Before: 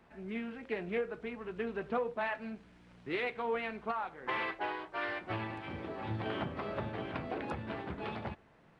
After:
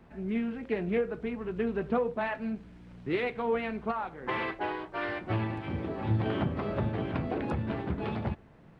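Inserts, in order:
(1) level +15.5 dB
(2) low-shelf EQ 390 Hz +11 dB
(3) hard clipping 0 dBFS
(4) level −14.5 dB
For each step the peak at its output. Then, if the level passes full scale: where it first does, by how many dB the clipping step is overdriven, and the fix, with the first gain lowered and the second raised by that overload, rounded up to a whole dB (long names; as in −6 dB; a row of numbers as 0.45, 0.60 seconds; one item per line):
−7.0, −2.5, −2.5, −17.0 dBFS
no step passes full scale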